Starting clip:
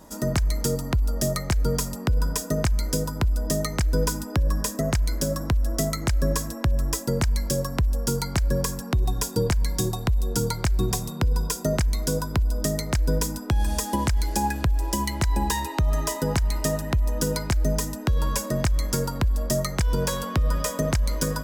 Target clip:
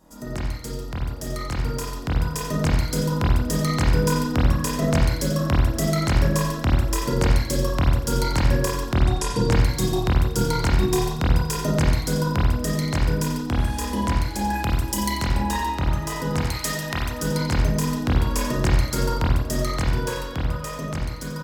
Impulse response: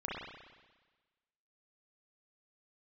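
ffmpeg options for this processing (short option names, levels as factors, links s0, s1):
-filter_complex "[0:a]asplit=3[s0][s1][s2];[s0]afade=t=out:st=8.95:d=0.02[s3];[s1]lowpass=f=11000:w=0.5412,lowpass=f=11000:w=1.3066,afade=t=in:st=8.95:d=0.02,afade=t=out:st=9.5:d=0.02[s4];[s2]afade=t=in:st=9.5:d=0.02[s5];[s3][s4][s5]amix=inputs=3:normalize=0,asettb=1/sr,asplit=3[s6][s7][s8];[s6]atrim=end=14.544[s9];[s7]atrim=start=14.54:end=15.22,asetpts=PTS-STARTPTS,afade=t=in:d=0.004:c=qsin,afade=t=out:st=0.676:d=0.004:c=qsin,highshelf=f=4500:g=10[s10];[s8]atrim=start=15.216[s11];[s9][s10]acrossfade=d=0.004:c1=hsin:c2=qsin[s12];[s12][s11]acrossfade=d=0.004:c1=qsin:c2=hsin,aecho=1:1:90|180|270:0.251|0.0829|0.0274,dynaudnorm=f=200:g=21:m=3.76,asettb=1/sr,asplit=3[s13][s14][s15];[s13]atrim=end=16.414[s16];[s14]atrim=start=16.41:end=17.21,asetpts=PTS-STARTPTS,afade=t=in:d=0.004:c=qsin,afade=t=out:st=0.796:d=0.004:c=qsin,tiltshelf=f=780:g=-6.5[s17];[s15]atrim=start=17.206[s18];[s16][s17]acrossfade=d=0.004:c1=hsin:c2=qsin[s19];[s19][s18]acrossfade=d=0.004:c1=qsin:c2=hsin[s20];[1:a]atrim=start_sample=2205,afade=t=out:st=0.31:d=0.01,atrim=end_sample=14112,asetrate=57330,aresample=44100[s21];[s20][s21]afir=irnorm=-1:irlink=0,volume=0.596"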